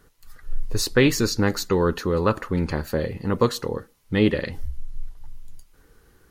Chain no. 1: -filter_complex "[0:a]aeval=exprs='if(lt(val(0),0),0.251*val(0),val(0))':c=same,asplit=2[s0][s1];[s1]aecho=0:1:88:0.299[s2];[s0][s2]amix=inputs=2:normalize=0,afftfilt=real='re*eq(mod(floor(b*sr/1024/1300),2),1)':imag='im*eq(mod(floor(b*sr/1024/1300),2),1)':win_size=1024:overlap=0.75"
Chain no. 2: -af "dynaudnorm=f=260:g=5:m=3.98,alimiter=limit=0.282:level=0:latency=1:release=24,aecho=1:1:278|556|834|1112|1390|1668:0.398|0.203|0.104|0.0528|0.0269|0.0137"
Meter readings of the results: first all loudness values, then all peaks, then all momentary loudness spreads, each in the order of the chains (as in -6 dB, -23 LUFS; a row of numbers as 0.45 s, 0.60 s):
-35.0 LUFS, -21.5 LUFS; -14.5 dBFS, -7.5 dBFS; 15 LU, 17 LU